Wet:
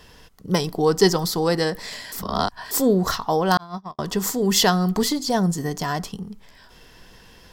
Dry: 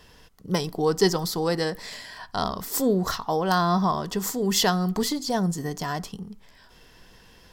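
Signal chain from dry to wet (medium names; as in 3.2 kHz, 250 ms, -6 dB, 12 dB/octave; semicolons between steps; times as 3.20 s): 2.12–2.71 s: reverse; 3.57–3.99 s: gate -18 dBFS, range -60 dB; trim +4 dB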